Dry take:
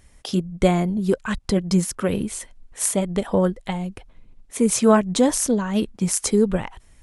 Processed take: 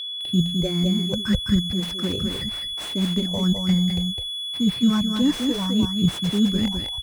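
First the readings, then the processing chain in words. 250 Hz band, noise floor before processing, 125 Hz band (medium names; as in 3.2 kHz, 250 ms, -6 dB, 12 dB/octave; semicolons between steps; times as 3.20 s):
+1.0 dB, -53 dBFS, +2.0 dB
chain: high-pass 66 Hz 12 dB/octave; band-stop 450 Hz, Q 12; gate -46 dBFS, range -35 dB; tone controls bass +13 dB, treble -7 dB; reverse; compression 6:1, threshold -22 dBFS, peak gain reduction 16 dB; reverse; phase shifter stages 4, 0.89 Hz, lowest notch 100–1000 Hz; whistle 3.4 kHz -33 dBFS; delay 208 ms -5 dB; slew-rate limiter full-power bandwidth 68 Hz; trim +4.5 dB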